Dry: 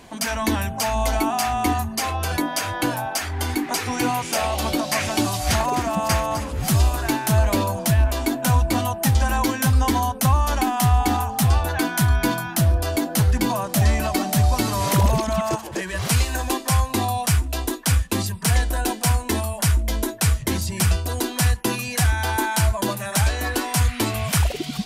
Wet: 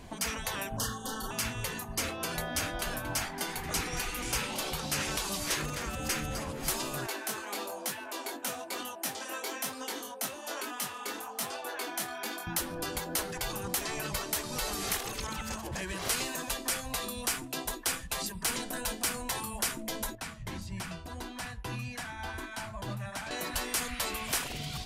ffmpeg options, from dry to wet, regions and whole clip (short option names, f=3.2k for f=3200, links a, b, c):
-filter_complex "[0:a]asettb=1/sr,asplit=3[a][b][c];[a]atrim=end=0.774[d];[b]atrim=start=0.77:end=1.31,asetpts=PTS-STARTPTS,afade=t=in:d=0.004:c=qsin,afade=t=out:st=0.536:d=0.004:c=qsin,asplit=2[e][f];[f]adelay=32,volume=-2.5dB[g];[e][g]amix=inputs=2:normalize=0,atrim=end_sample=23814,acompressor=threshold=-22dB:ratio=2:attack=3.2:release=140:knee=1:detection=peak,asuperstop=centerf=2300:order=20:qfactor=2.3[h];[c]atrim=start=1.306[i];[d][h]acrossfade=d=0.004:c1=hsin:c2=qsin[j];[j][i]acrossfade=d=0.004:c1=qsin:c2=hsin,asettb=1/sr,asplit=3[k][l][m];[k]atrim=end=2.324[n];[l]atrim=start=2.32:end=4.7,asetpts=PTS-STARTPTS,afade=t=in:d=0.004:c=qsin,afade=t=out:st=2.376:d=0.004:c=qsin,bandreject=f=60:t=h:w=6,bandreject=f=120:t=h:w=6,bandreject=f=180:t=h:w=6,bandreject=f=240:t=h:w=6,bandreject=f=300:t=h:w=6,bandreject=f=360:t=h:w=6,bandreject=f=420:t=h:w=6,bandreject=f=480:t=h:w=6,bandreject=f=540:t=h:w=6,asubboost=boost=9:cutoff=150,aecho=1:1:228:0.168,atrim=end_sample=104958[o];[m]atrim=start=4.696[p];[n][o]acrossfade=d=0.004:c1=hsin:c2=qsin[q];[q][p]acrossfade=d=0.004:c1=qsin:c2=hsin,asettb=1/sr,asplit=3[r][s][t];[r]atrim=end=7.064[u];[s]atrim=start=7.06:end=12.47,asetpts=PTS-STARTPTS,afade=t=in:d=0.004:c=qsin,afade=t=out:st=5.406:d=0.004:c=qsin,highpass=f=350:w=0.5412,highpass=f=350:w=1.3066,flanger=delay=19.5:depth=5:speed=1.1[v];[t]atrim=start=12.466[w];[u][v]acrossfade=d=0.004:c1=hsin:c2=qsin[x];[x][w]acrossfade=d=0.004:c1=qsin:c2=hsin,asettb=1/sr,asplit=3[y][z][aa];[y]atrim=end=20.154[ab];[z]atrim=start=20.15:end=23.31,asetpts=PTS-STARTPTS,afade=t=in:d=0.004:c=qsin,afade=t=out:st=3.156:d=0.004:c=qsin,lowpass=f=2.5k:p=1,equalizer=f=420:w=1.4:g=-9,flanger=delay=6.6:depth=3.4:regen=-71:speed=1.7:shape=sinusoidal[ac];[aa]atrim=start=23.306[ad];[ab][ac]acrossfade=d=0.004:c1=hsin:c2=qsin[ae];[ae][ad]acrossfade=d=0.004:c1=qsin:c2=hsin,afftfilt=real='re*lt(hypot(re,im),0.178)':imag='im*lt(hypot(re,im),0.178)':win_size=1024:overlap=0.75,lowshelf=f=140:g=11.5,volume=-6dB"